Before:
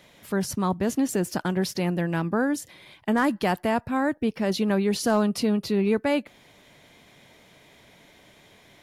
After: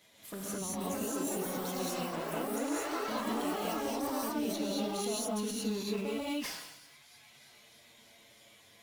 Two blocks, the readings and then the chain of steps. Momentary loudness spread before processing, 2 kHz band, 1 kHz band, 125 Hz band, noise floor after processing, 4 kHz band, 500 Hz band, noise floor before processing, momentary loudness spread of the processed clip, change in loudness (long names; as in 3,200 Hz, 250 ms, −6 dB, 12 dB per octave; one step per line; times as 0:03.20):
5 LU, −11.5 dB, −8.0 dB, −14.5 dB, −60 dBFS, −4.5 dB, −9.5 dB, −56 dBFS, 4 LU, −9.5 dB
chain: high-shelf EQ 3,700 Hz +10.5 dB
on a send: delay with a high-pass on its return 315 ms, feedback 79%, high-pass 1,500 Hz, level −22 dB
on the sum: flanger swept by the level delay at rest 10.9 ms, full sweep at −23 dBFS
low-shelf EQ 110 Hz −6 dB
reverb reduction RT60 1.7 s
in parallel at −11 dB: bit reduction 4 bits
on the sum: delay with pitch and tempo change per echo 500 ms, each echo +6 semitones, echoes 3
downward compressor 2.5 to 1, threshold −35 dBFS, peak gain reduction 12.5 dB
reverb whose tail is shaped and stops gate 250 ms rising, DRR −6.5 dB
level that may fall only so fast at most 54 dB per second
level −9 dB